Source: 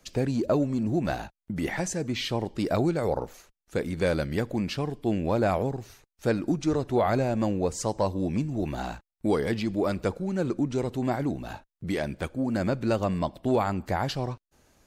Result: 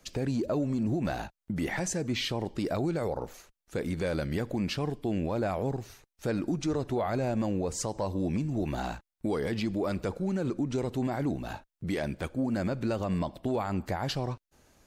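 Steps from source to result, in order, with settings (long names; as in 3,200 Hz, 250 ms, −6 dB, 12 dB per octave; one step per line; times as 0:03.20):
brickwall limiter −22 dBFS, peak gain reduction 7 dB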